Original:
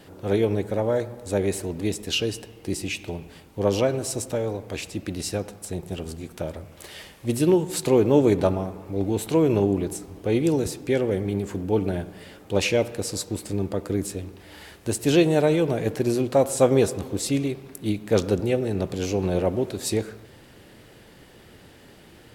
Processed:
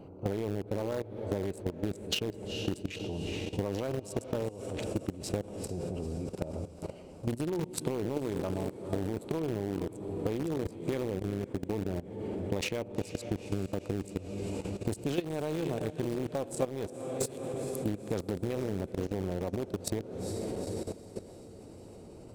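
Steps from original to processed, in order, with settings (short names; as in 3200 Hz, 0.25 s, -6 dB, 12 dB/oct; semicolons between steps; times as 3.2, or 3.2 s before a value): Wiener smoothing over 25 samples; 16.93–17.54 differentiator; on a send: diffused feedback echo 0.456 s, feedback 63%, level -13 dB; on the sum: level quantiser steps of 14 dB; in parallel at -11 dB: bit-crush 4-bit; on the sum: compressor 8:1, threshold -36 dBFS, peak gain reduction 24 dB; gain +7 dB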